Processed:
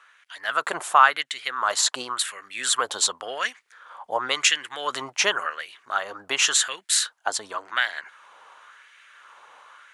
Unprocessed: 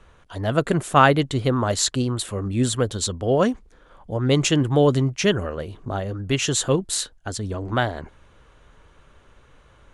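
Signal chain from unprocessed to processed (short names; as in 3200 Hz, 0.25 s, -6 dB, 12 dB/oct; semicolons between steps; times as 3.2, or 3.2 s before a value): AGC gain up to 5.5 dB; limiter -8 dBFS, peak gain reduction 6.5 dB; LFO high-pass sine 0.92 Hz 840–2000 Hz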